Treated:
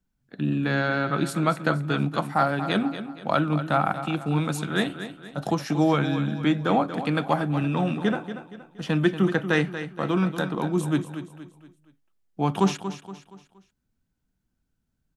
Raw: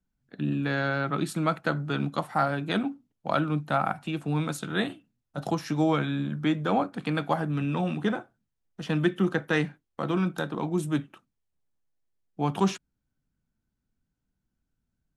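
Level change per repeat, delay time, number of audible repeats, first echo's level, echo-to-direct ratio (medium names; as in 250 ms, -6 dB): -8.0 dB, 235 ms, 4, -11.0 dB, -10.0 dB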